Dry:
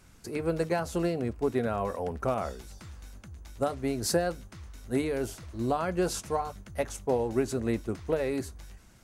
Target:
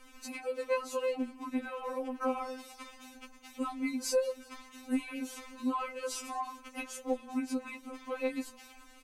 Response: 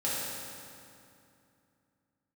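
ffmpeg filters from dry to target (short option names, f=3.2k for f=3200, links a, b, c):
-filter_complex "[0:a]bandreject=f=840:w=12,acompressor=threshold=-36dB:ratio=3,equalizer=f=100:t=o:w=0.67:g=9,equalizer=f=1k:t=o:w=0.67:g=7,equalizer=f=2.5k:t=o:w=0.67:g=8,asplit=2[a][b];[b]asplit=5[c][d][e][f][g];[c]adelay=188,afreqshift=-39,volume=-22dB[h];[d]adelay=376,afreqshift=-78,volume=-25.7dB[i];[e]adelay=564,afreqshift=-117,volume=-29.5dB[j];[f]adelay=752,afreqshift=-156,volume=-33.2dB[k];[g]adelay=940,afreqshift=-195,volume=-37dB[l];[h][i][j][k][l]amix=inputs=5:normalize=0[m];[a][m]amix=inputs=2:normalize=0,afftfilt=real='re*3.46*eq(mod(b,12),0)':imag='im*3.46*eq(mod(b,12),0)':win_size=2048:overlap=0.75,volume=3dB"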